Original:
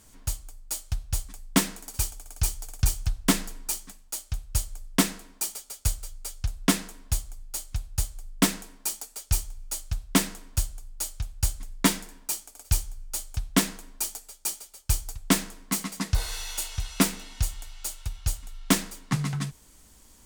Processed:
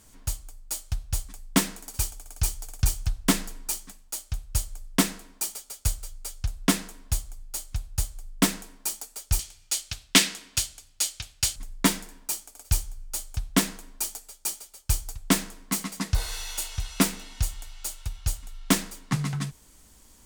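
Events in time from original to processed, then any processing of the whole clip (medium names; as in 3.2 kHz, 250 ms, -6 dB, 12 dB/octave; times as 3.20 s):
9.39–11.56 s: frequency weighting D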